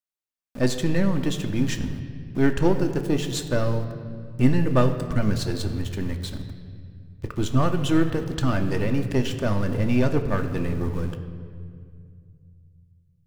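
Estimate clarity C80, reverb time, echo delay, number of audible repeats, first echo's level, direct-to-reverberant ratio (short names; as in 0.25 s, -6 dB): 10.5 dB, 2.2 s, none, none, none, 5.5 dB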